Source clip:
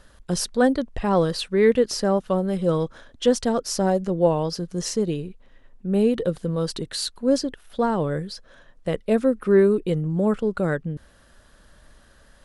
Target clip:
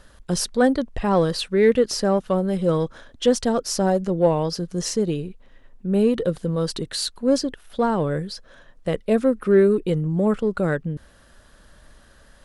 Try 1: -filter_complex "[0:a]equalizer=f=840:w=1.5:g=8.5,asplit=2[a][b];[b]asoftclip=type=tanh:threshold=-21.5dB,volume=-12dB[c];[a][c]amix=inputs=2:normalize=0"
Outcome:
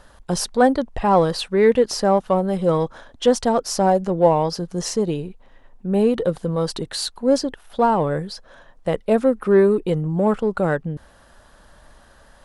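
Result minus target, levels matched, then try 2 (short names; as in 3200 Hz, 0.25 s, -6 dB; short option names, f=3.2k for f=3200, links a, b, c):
1000 Hz band +5.0 dB
-filter_complex "[0:a]asplit=2[a][b];[b]asoftclip=type=tanh:threshold=-21.5dB,volume=-12dB[c];[a][c]amix=inputs=2:normalize=0"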